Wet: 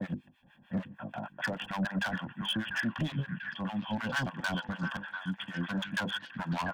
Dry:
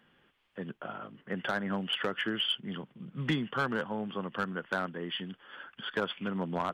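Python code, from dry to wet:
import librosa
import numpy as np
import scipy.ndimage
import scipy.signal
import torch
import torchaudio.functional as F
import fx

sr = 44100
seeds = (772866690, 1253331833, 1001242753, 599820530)

p1 = fx.block_reorder(x, sr, ms=142.0, group=5)
p2 = fx.highpass(p1, sr, hz=130.0, slope=6)
p3 = fx.low_shelf(p2, sr, hz=340.0, db=10.5)
p4 = fx.hum_notches(p3, sr, base_hz=50, count=10)
p5 = p4 + 0.98 * np.pad(p4, (int(1.2 * sr / 1000.0), 0))[:len(p4)]
p6 = fx.dynamic_eq(p5, sr, hz=1100.0, q=1.1, threshold_db=-42.0, ratio=4.0, max_db=6)
p7 = fx.rider(p6, sr, range_db=4, speed_s=2.0)
p8 = np.clip(p7, -10.0 ** (-25.5 / 20.0), 10.0 ** (-25.5 / 20.0))
p9 = fx.harmonic_tremolo(p8, sr, hz=6.6, depth_pct=100, crossover_hz=760.0)
y = p9 + fx.echo_stepped(p9, sr, ms=693, hz=1300.0, octaves=0.7, feedback_pct=70, wet_db=-5, dry=0)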